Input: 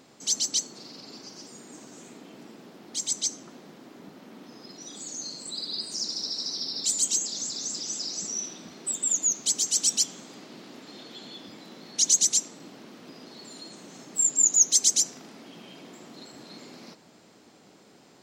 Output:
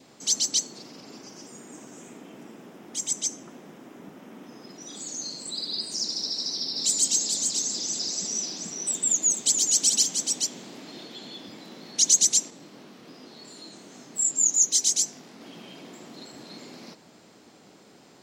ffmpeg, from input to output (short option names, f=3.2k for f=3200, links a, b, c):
-filter_complex "[0:a]asettb=1/sr,asplit=3[a][b][c];[a]atrim=end=0.824[d];[b]atrim=start=0.82:end=4.89,asetpts=PTS-STARTPTS,afade=t=in:d=0.004:c=qsin,afade=t=out:st=4.066:d=0.004:c=qsin,equalizer=f=4.3k:t=o:w=0.4:g=-11.5[e];[c]atrim=start=4.886[f];[d][e]acrossfade=d=0.004:c1=hsin:c2=qsin[g];[g][f]acrossfade=d=0.004:c1=qsin:c2=hsin,asettb=1/sr,asplit=3[h][i][j];[h]atrim=end=6.334[k];[i]atrim=start=6.33:end=11.06,asetpts=PTS-STARTPTS,afade=t=in:d=0.004:c=qsin,afade=t=out:st=4.726:d=0.004:c=qsin,aecho=1:1:432:0.562,atrim=end_sample=208593[l];[j]atrim=start=11.056[m];[k][l]acrossfade=d=0.004:c1=hsin:c2=qsin[n];[n][m]acrossfade=d=0.004:c1=qsin:c2=hsin,asettb=1/sr,asplit=3[o][p][q];[o]atrim=end=12.504[r];[p]atrim=start=12.5:end=15.41,asetpts=PTS-STARTPTS,afade=t=in:d=0.004:c=qsin,afade=t=out:st=2.906:d=0.004:c=qsin,flanger=delay=19.5:depth=6.6:speed=2.7[s];[q]atrim=start=15.406[t];[r][s]acrossfade=d=0.004:c1=hsin:c2=qsin[u];[u][t]acrossfade=d=0.004:c1=qsin:c2=hsin,adynamicequalizer=threshold=0.00126:dfrequency=1300:dqfactor=3:tfrequency=1300:tqfactor=3:attack=5:release=100:ratio=0.375:range=2:mode=cutabove:tftype=bell,volume=2dB"